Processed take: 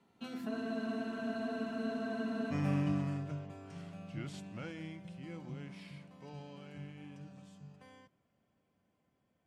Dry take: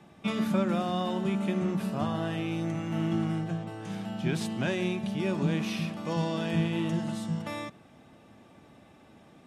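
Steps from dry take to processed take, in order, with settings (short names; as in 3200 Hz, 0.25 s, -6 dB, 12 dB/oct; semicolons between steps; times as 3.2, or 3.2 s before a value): Doppler pass-by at 2.14, 47 m/s, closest 3.4 m; spectral freeze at 0.52, 2.00 s; gain +15 dB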